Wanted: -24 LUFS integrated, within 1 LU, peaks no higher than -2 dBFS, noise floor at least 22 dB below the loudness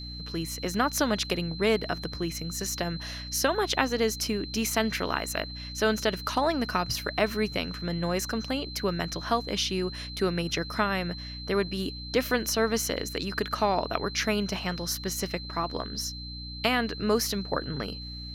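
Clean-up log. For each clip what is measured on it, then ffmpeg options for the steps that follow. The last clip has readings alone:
hum 60 Hz; harmonics up to 300 Hz; hum level -39 dBFS; steady tone 4100 Hz; tone level -40 dBFS; loudness -29.0 LUFS; peak -6.0 dBFS; loudness target -24.0 LUFS
-> -af "bandreject=f=60:t=h:w=4,bandreject=f=120:t=h:w=4,bandreject=f=180:t=h:w=4,bandreject=f=240:t=h:w=4,bandreject=f=300:t=h:w=4"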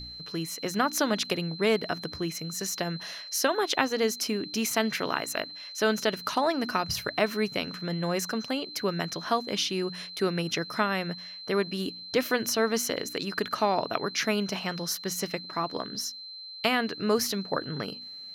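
hum none; steady tone 4100 Hz; tone level -40 dBFS
-> -af "bandreject=f=4.1k:w=30"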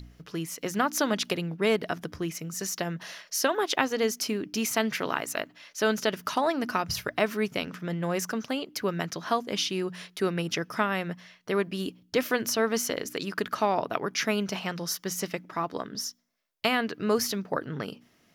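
steady tone none; loudness -29.5 LUFS; peak -6.0 dBFS; loudness target -24.0 LUFS
-> -af "volume=5.5dB,alimiter=limit=-2dB:level=0:latency=1"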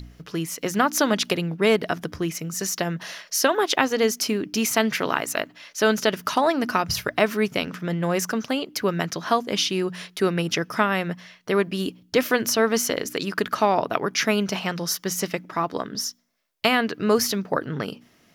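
loudness -24.0 LUFS; peak -2.0 dBFS; noise floor -59 dBFS

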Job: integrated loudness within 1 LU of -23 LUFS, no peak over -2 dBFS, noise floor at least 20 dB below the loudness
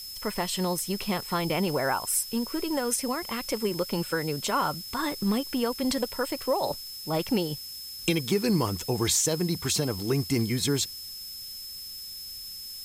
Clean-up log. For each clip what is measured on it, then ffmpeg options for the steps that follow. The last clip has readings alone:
steady tone 5200 Hz; tone level -39 dBFS; noise floor -40 dBFS; noise floor target -49 dBFS; loudness -28.5 LUFS; peak -11.5 dBFS; loudness target -23.0 LUFS
-> -af "bandreject=f=5.2k:w=30"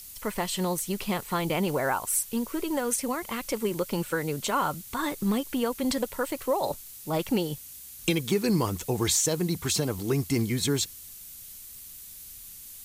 steady tone none; noise floor -45 dBFS; noise floor target -48 dBFS
-> -af "afftdn=nr=6:nf=-45"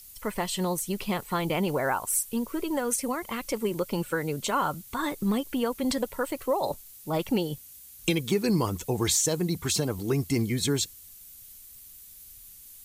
noise floor -49 dBFS; loudness -28.5 LUFS; peak -12.0 dBFS; loudness target -23.0 LUFS
-> -af "volume=5.5dB"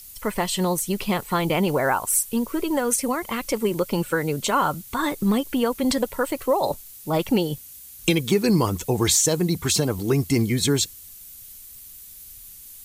loudness -23.0 LUFS; peak -6.5 dBFS; noise floor -43 dBFS

